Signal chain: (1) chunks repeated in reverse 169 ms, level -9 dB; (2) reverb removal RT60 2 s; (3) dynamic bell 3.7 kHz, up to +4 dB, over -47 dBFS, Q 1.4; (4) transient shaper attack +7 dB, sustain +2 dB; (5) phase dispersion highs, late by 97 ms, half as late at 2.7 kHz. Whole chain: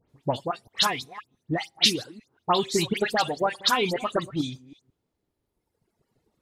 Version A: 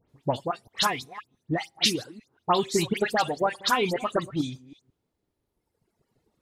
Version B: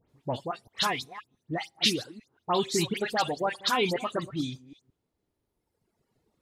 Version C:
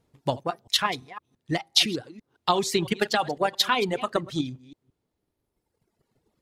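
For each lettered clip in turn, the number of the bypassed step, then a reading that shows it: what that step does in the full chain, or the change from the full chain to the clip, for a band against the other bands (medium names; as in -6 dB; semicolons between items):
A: 3, crest factor change -2.5 dB; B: 4, loudness change -3.5 LU; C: 5, momentary loudness spread change -1 LU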